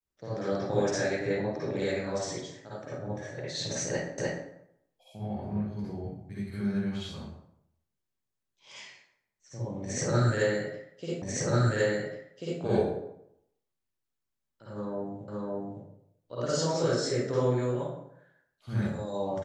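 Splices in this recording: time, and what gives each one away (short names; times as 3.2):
4.18 repeat of the last 0.3 s
11.22 repeat of the last 1.39 s
15.28 repeat of the last 0.56 s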